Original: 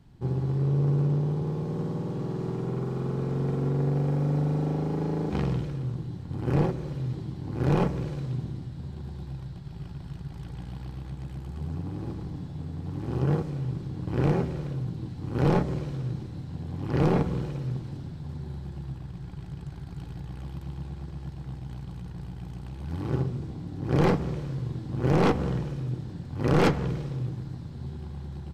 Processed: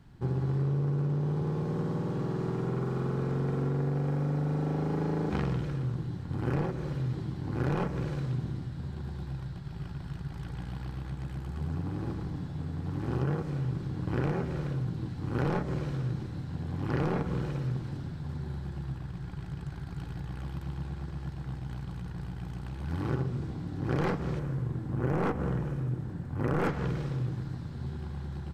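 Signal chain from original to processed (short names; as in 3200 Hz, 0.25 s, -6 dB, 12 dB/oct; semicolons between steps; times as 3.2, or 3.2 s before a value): 24.39–26.69 bell 4300 Hz -10 dB 1.7 oct; compressor 6:1, threshold -26 dBFS, peak gain reduction 8.5 dB; bell 1500 Hz +6 dB 0.97 oct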